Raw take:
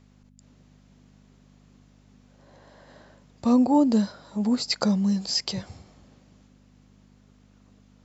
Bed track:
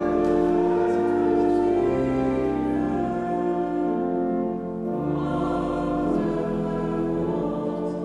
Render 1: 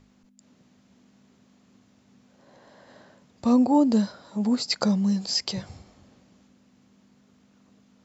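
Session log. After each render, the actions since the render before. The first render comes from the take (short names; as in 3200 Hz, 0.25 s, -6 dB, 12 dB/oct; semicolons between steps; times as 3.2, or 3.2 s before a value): de-hum 50 Hz, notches 3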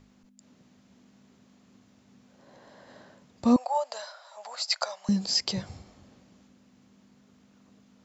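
3.56–5.09 elliptic high-pass 610 Hz, stop band 50 dB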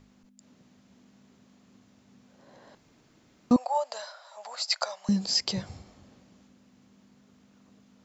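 2.75–3.51 room tone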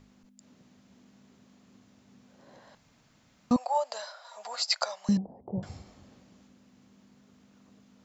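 2.6–3.67 bell 360 Hz -10.5 dB; 4.24–4.64 comb 4.2 ms, depth 76%; 5.17–5.63 Chebyshev low-pass 830 Hz, order 4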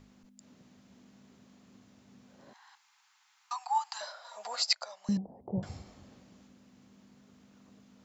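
2.53–4.01 steep high-pass 790 Hz 96 dB/oct; 4.73–5.55 fade in, from -16 dB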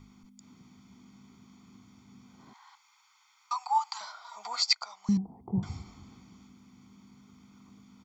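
comb 0.9 ms, depth 88%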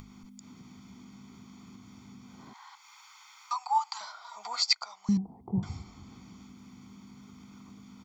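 upward compressor, threshold -43 dBFS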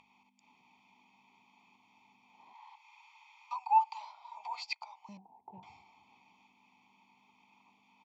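in parallel at -8 dB: hard clip -27.5 dBFS, distortion -7 dB; on the sum: double band-pass 1500 Hz, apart 1.5 oct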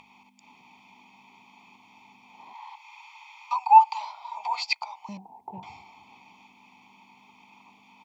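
gain +11.5 dB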